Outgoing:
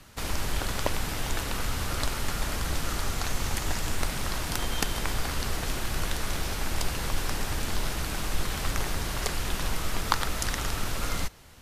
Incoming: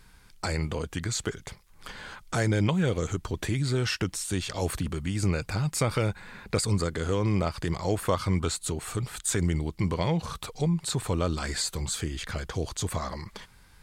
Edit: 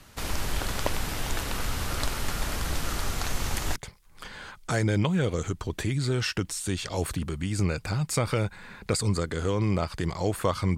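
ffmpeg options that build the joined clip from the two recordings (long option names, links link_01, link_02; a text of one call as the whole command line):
ffmpeg -i cue0.wav -i cue1.wav -filter_complex "[0:a]apad=whole_dur=10.77,atrim=end=10.77,atrim=end=3.762[link_01];[1:a]atrim=start=1.398:end=8.41[link_02];[link_01][link_02]acrossfade=duration=0.004:curve1=hsin:curve2=hsin" out.wav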